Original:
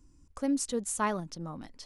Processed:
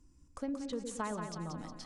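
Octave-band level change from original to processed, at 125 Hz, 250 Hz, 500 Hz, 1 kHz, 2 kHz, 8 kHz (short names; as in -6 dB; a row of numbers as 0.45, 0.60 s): -2.5, -6.5, -5.5, -7.0, -8.0, -12.0 dB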